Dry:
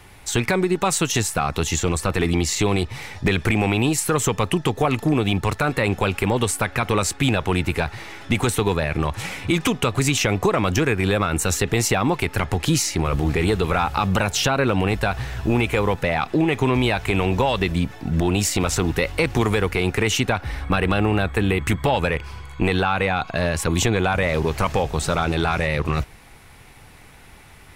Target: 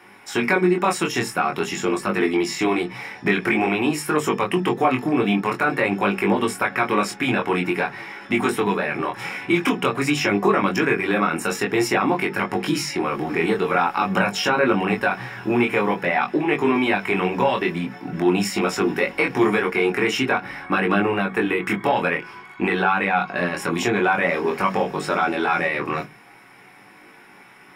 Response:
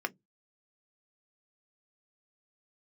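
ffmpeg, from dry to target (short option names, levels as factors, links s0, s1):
-filter_complex "[0:a]flanger=delay=20:depth=4.2:speed=0.48[s0];[1:a]atrim=start_sample=2205[s1];[s0][s1]afir=irnorm=-1:irlink=0"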